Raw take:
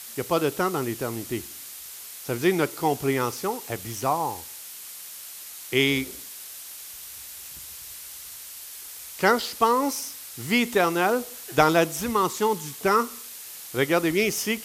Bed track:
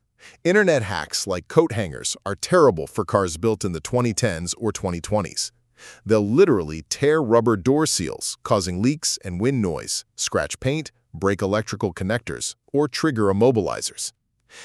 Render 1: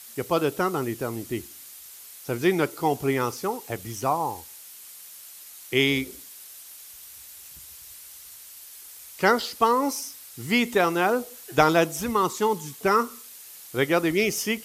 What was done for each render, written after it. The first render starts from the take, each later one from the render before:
broadband denoise 6 dB, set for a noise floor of −41 dBFS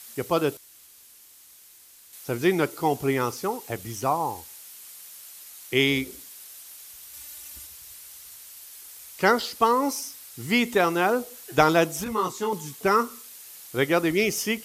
0:00.57–0:02.13: fill with room tone
0:07.13–0:07.67: comb filter 3.4 ms, depth 94%
0:12.04–0:12.53: micro pitch shift up and down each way 27 cents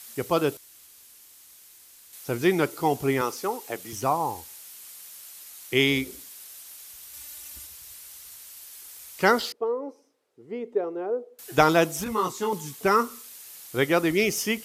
0:03.21–0:03.93: high-pass filter 260 Hz
0:09.52–0:11.39: resonant band-pass 440 Hz, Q 3.9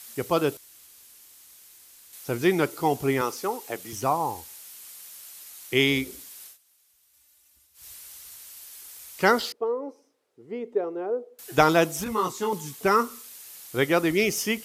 0:06.46–0:07.86: duck −19.5 dB, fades 0.12 s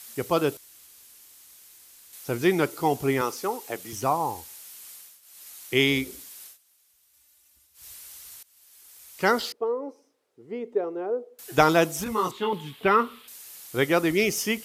0:04.94–0:05.48: duck −14.5 dB, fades 0.27 s
0:08.43–0:09.53: fade in, from −21 dB
0:12.31–0:13.28: high shelf with overshoot 4,500 Hz −11.5 dB, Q 3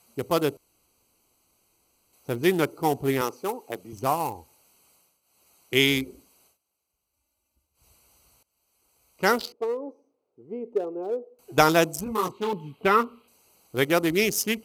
adaptive Wiener filter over 25 samples
high-shelf EQ 5,100 Hz +11 dB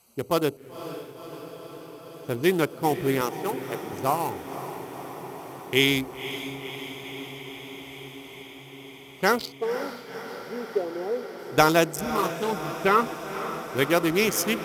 feedback delay with all-pass diffusion 516 ms, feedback 78%, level −11.5 dB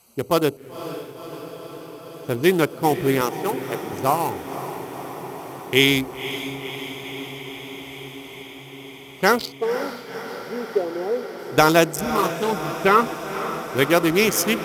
level +4.5 dB
brickwall limiter −1 dBFS, peak gain reduction 3 dB

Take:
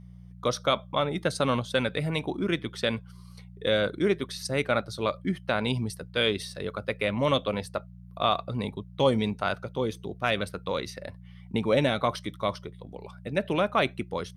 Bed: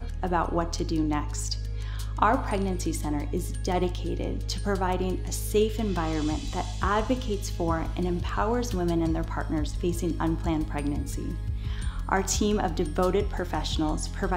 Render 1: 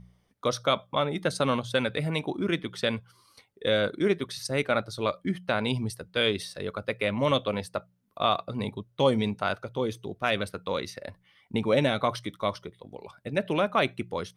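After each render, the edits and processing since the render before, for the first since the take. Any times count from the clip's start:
hum removal 60 Hz, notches 3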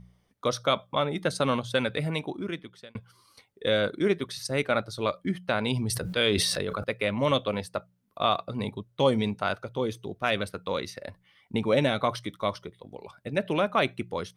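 0:02.04–0:02.95: fade out
0:05.72–0:06.84: level that may fall only so fast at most 22 dB per second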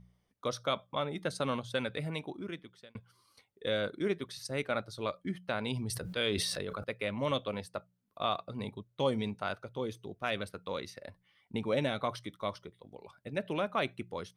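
level −7.5 dB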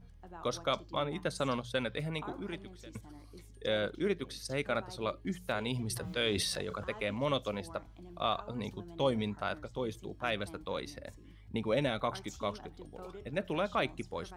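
mix in bed −23.5 dB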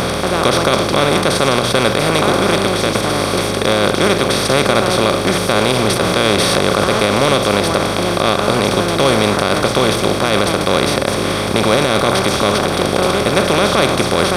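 compressor on every frequency bin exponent 0.2
boost into a limiter +11.5 dB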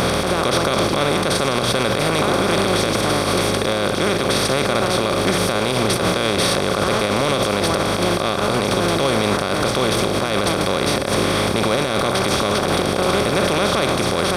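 brickwall limiter −8 dBFS, peak gain reduction 7 dB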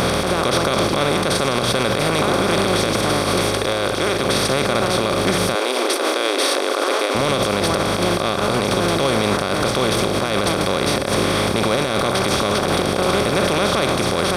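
0:03.49–0:04.19: parametric band 190 Hz −7 dB 0.73 octaves
0:05.55–0:07.15: linear-phase brick-wall high-pass 250 Hz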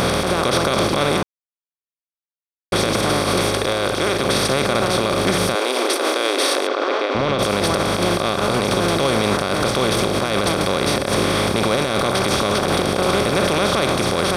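0:01.23–0:02.72: silence
0:06.67–0:07.39: high-frequency loss of the air 170 metres

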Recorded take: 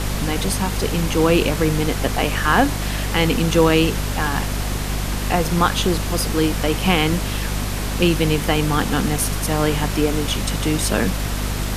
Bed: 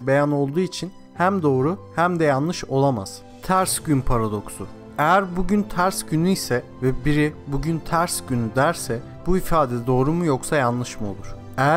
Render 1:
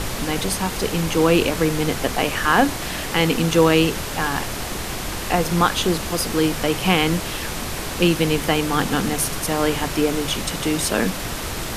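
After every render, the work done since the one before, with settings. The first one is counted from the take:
mains-hum notches 50/100/150/200/250 Hz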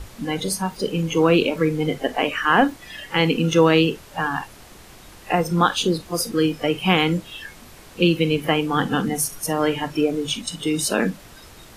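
noise reduction from a noise print 17 dB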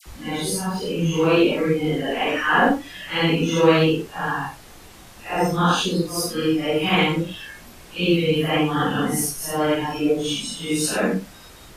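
random phases in long frames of 200 ms
all-pass dispersion lows, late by 60 ms, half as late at 1,500 Hz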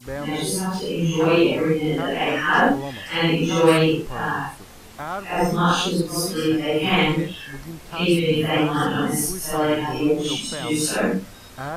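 mix in bed −13 dB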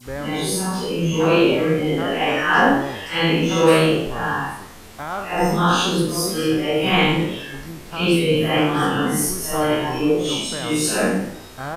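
peak hold with a decay on every bin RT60 0.59 s
echo with shifted repeats 101 ms, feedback 48%, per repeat +62 Hz, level −15 dB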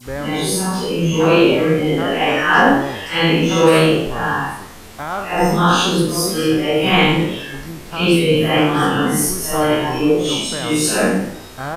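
level +3.5 dB
brickwall limiter −1 dBFS, peak gain reduction 3 dB

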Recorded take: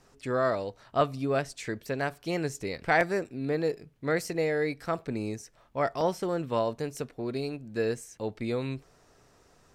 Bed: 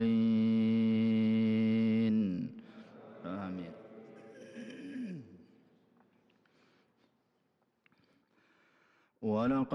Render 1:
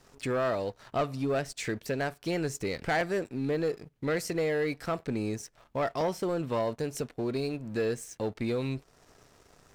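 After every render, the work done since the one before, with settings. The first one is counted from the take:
downward compressor 1.5 to 1, threshold −45 dBFS, peak gain reduction 9.5 dB
leveller curve on the samples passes 2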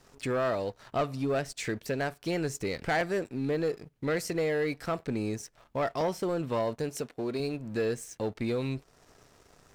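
0:06.89–0:07.40: low-shelf EQ 110 Hz −11.5 dB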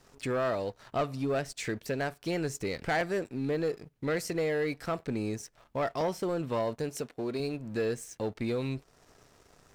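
level −1 dB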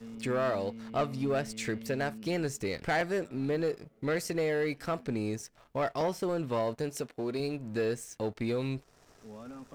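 mix in bed −15 dB

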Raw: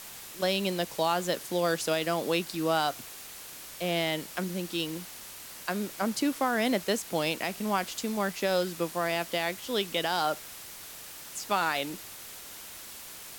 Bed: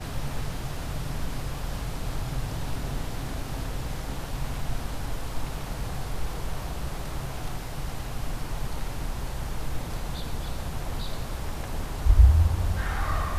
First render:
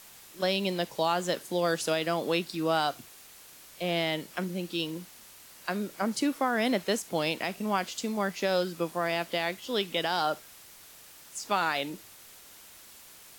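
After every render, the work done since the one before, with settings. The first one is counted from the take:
noise reduction from a noise print 7 dB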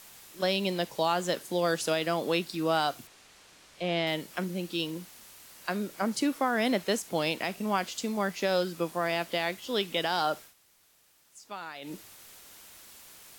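0:03.07–0:04.07: high-frequency loss of the air 64 metres
0:10.42–0:11.93: duck −13 dB, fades 0.12 s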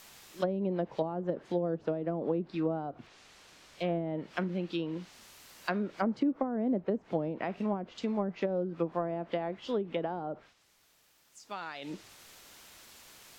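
treble cut that deepens with the level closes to 430 Hz, closed at −24 dBFS
parametric band 10,000 Hz −6 dB 0.76 octaves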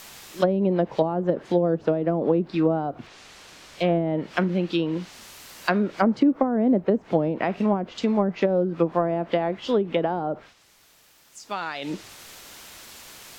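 level +10 dB

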